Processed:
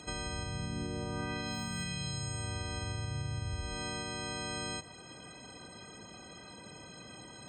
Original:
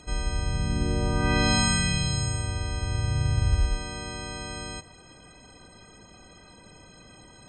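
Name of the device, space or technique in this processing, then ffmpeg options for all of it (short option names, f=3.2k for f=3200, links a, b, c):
broadcast voice chain: -af "highpass=100,deesser=0.6,acompressor=threshold=-35dB:ratio=3,equalizer=f=3.5k:t=o:w=0.29:g=3,alimiter=level_in=4.5dB:limit=-24dB:level=0:latency=1:release=441,volume=-4.5dB,volume=1dB"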